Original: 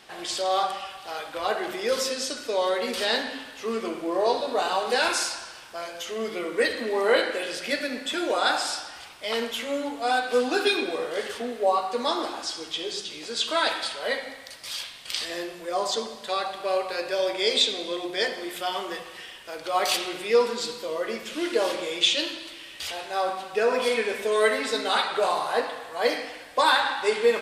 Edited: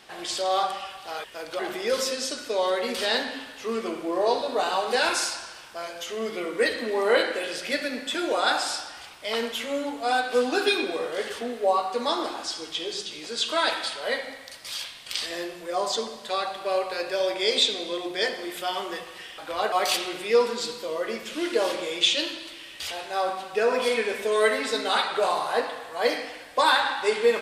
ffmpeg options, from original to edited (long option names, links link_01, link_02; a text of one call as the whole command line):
ffmpeg -i in.wav -filter_complex "[0:a]asplit=5[link_01][link_02][link_03][link_04][link_05];[link_01]atrim=end=1.242[link_06];[link_02]atrim=start=19.368:end=19.722[link_07];[link_03]atrim=start=1.578:end=19.372[link_08];[link_04]atrim=start=1.238:end=1.582[link_09];[link_05]atrim=start=19.718[link_10];[link_06][link_07]acrossfade=duration=0.004:curve1=hsin:curve2=hsin[link_11];[link_11][link_08]acrossfade=duration=0.004:curve1=hsin:curve2=hsin[link_12];[link_12][link_09]acrossfade=duration=0.004:curve1=hsin:curve2=hsin[link_13];[link_13][link_10]acrossfade=duration=0.004:curve1=hsin:curve2=hsin" out.wav